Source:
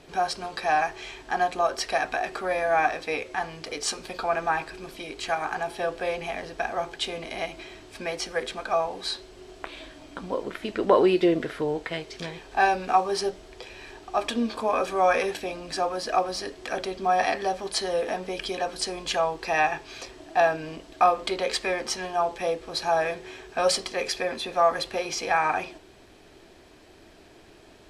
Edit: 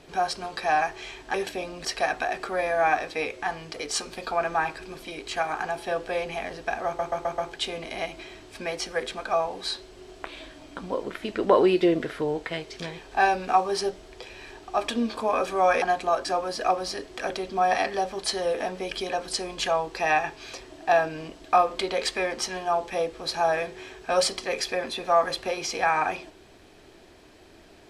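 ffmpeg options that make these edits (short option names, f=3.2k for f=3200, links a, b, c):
-filter_complex "[0:a]asplit=9[a][b][c][d][e][f][g][h][i];[a]atrim=end=1.342[j];[b]atrim=start=15.218:end=15.732[k];[c]atrim=start=1.768:end=6.912[l];[d]atrim=start=6.778:end=6.912[m];[e]atrim=start=6.778:end=6.912[n];[f]atrim=start=6.778:end=6.912[o];[g]atrim=start=6.778:end=15.222[p];[h]atrim=start=1.338:end=1.772[q];[i]atrim=start=15.728[r];[j][k]acrossfade=d=0.004:c1=hsin:c2=hsin[s];[s][l]acrossfade=d=0.004:c1=hsin:c2=hsin[t];[t][m]acrossfade=d=0.004:c1=hsin:c2=hsin[u];[u][n]acrossfade=d=0.004:c1=hsin:c2=hsin[v];[v][o]acrossfade=d=0.004:c1=hsin:c2=hsin[w];[w][p]acrossfade=d=0.004:c1=hsin:c2=hsin[x];[x][q]acrossfade=d=0.004:c1=hsin:c2=hsin[y];[y][r]acrossfade=d=0.004:c1=hsin:c2=hsin"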